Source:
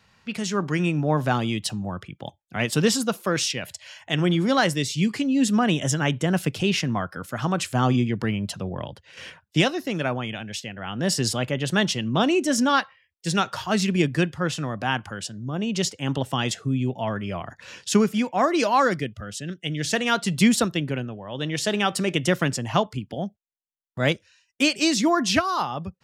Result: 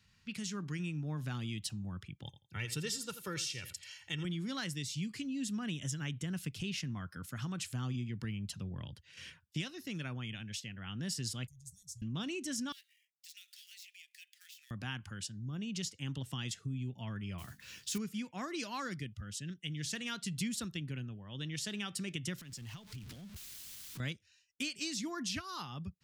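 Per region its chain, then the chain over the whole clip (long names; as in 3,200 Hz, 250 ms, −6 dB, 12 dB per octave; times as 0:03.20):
0:02.25–0:04.25: comb filter 2.2 ms, depth 63% + repeating echo 84 ms, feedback 20%, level −14 dB
0:11.47–0:12.02: inverse Chebyshev band-stop filter 210–3,100 Hz, stop band 50 dB + de-essing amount 70%
0:12.72–0:14.71: gap after every zero crossing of 0.056 ms + Butterworth high-pass 2,000 Hz 48 dB per octave + downward compressor 3 to 1, threshold −47 dBFS
0:17.38–0:17.98: mains-hum notches 50/100/150/200/250/300 Hz + noise that follows the level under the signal 15 dB + double-tracking delay 15 ms −8 dB
0:22.38–0:24.00: converter with a step at zero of −31.5 dBFS + parametric band 4,100 Hz +3.5 dB 1.5 octaves + downward compressor, threshold −36 dBFS
whole clip: guitar amp tone stack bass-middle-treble 6-0-2; downward compressor 2.5 to 1, threshold −46 dBFS; level +8 dB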